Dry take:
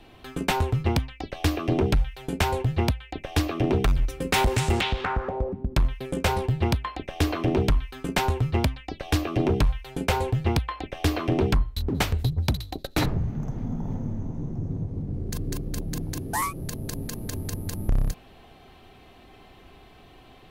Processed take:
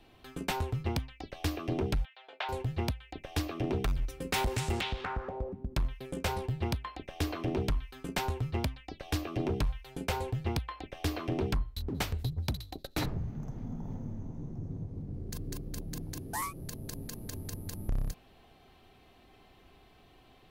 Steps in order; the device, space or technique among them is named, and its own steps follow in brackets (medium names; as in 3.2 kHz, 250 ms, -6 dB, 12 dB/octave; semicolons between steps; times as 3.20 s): 2.05–2.49 s: Chebyshev band-pass 590–3700 Hz, order 3; presence and air boost (peaking EQ 4.9 kHz +2 dB; treble shelf 12 kHz +5 dB); trim -9 dB